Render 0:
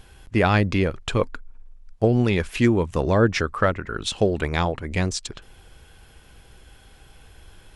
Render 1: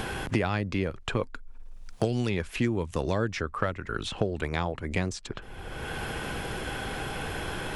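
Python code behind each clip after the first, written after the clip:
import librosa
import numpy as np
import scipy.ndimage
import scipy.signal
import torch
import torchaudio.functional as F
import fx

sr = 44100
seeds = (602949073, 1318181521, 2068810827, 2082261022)

y = fx.band_squash(x, sr, depth_pct=100)
y = y * 10.0 ** (-7.5 / 20.0)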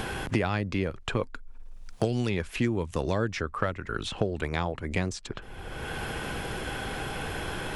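y = x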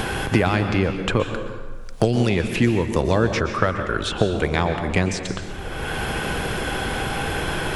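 y = fx.rev_plate(x, sr, seeds[0], rt60_s=1.4, hf_ratio=0.7, predelay_ms=110, drr_db=6.5)
y = y * 10.0 ** (8.0 / 20.0)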